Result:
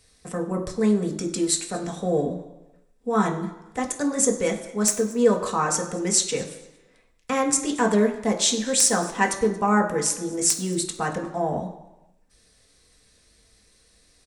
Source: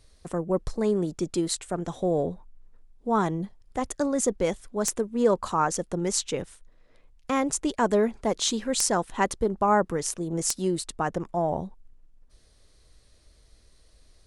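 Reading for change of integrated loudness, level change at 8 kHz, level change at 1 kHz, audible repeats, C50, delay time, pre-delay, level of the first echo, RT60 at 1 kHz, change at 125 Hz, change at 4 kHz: +4.0 dB, +7.5 dB, +1.0 dB, 1, 10.0 dB, 228 ms, 3 ms, −22.0 dB, 1.0 s, +2.0 dB, +5.0 dB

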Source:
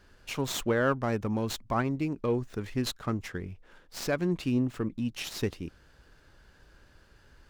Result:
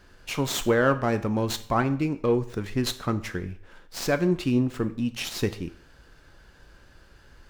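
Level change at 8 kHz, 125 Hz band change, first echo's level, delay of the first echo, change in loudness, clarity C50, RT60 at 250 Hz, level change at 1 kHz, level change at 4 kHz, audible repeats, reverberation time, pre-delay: +5.0 dB, +4.5 dB, no echo audible, no echo audible, +5.0 dB, 15.5 dB, 0.50 s, +5.5 dB, +5.0 dB, no echo audible, 0.60 s, 3 ms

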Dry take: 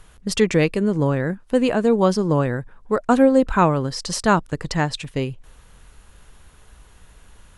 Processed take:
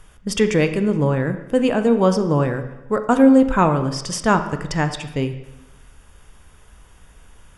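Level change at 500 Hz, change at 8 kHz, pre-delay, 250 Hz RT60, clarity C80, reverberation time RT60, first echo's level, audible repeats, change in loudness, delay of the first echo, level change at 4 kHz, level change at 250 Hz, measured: +0.5 dB, 0.0 dB, 7 ms, 1.0 s, 12.5 dB, 0.95 s, no echo audible, no echo audible, +1.5 dB, no echo audible, −0.5 dB, +2.5 dB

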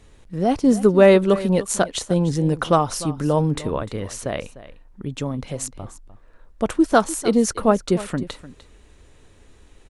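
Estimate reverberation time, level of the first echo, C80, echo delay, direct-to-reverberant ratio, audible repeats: no reverb audible, −16.5 dB, no reverb audible, 300 ms, no reverb audible, 1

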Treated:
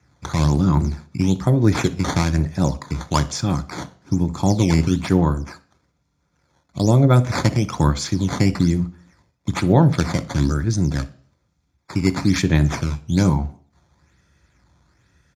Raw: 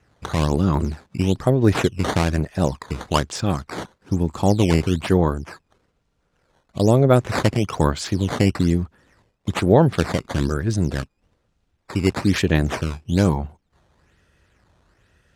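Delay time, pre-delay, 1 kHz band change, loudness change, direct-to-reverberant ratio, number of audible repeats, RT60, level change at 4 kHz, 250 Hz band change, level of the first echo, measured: 61 ms, 3 ms, −0.5 dB, +1.0 dB, 11.0 dB, 1, 0.50 s, 0.0 dB, +1.5 dB, −20.5 dB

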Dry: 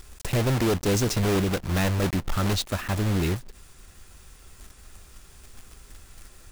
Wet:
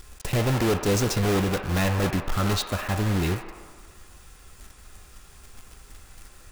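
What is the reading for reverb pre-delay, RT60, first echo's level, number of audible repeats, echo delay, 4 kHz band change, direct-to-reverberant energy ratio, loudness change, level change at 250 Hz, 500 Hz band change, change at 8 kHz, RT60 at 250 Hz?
3 ms, 1.6 s, no echo audible, no echo audible, no echo audible, +0.5 dB, 3.0 dB, +0.5 dB, 0.0 dB, +1.0 dB, 0.0 dB, 1.9 s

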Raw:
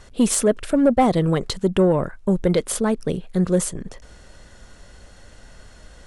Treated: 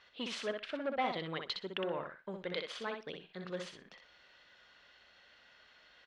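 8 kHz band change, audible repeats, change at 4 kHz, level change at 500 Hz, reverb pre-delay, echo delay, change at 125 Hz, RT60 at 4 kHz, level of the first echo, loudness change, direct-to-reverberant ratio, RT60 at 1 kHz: −30.5 dB, 2, −7.5 dB, −19.0 dB, no reverb audible, 62 ms, −27.0 dB, no reverb audible, −5.5 dB, −19.0 dB, no reverb audible, no reverb audible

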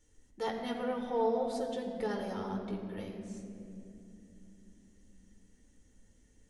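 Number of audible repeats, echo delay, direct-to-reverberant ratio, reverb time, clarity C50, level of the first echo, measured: no echo audible, no echo audible, 0.5 dB, 2.9 s, 5.5 dB, no echo audible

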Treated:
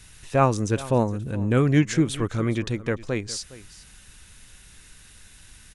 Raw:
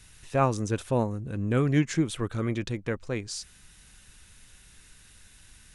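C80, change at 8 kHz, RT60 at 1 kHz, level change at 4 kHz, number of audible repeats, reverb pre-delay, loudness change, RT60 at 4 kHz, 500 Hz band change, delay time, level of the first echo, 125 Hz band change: no reverb audible, +4.5 dB, no reverb audible, +4.5 dB, 1, no reverb audible, +4.5 dB, no reverb audible, +4.5 dB, 412 ms, −18.5 dB, +4.5 dB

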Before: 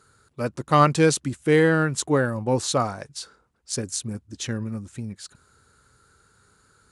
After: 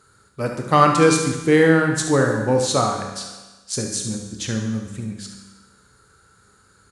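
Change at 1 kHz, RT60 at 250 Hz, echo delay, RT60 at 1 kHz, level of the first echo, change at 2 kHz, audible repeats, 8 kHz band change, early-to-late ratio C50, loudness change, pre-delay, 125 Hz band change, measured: +4.5 dB, 1.2 s, 72 ms, 1.2 s, −10.0 dB, +4.0 dB, 1, +4.0 dB, 4.0 dB, +3.5 dB, 19 ms, +2.0 dB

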